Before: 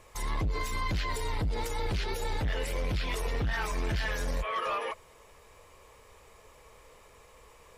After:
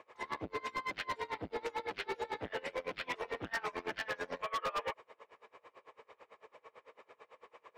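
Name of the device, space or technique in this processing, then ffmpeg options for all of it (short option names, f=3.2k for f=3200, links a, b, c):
helicopter radio: -af "highpass=340,lowpass=2.5k,aeval=exprs='val(0)*pow(10,-27*(0.5-0.5*cos(2*PI*9*n/s))/20)':c=same,asoftclip=type=hard:threshold=-37dB,volume=5.5dB"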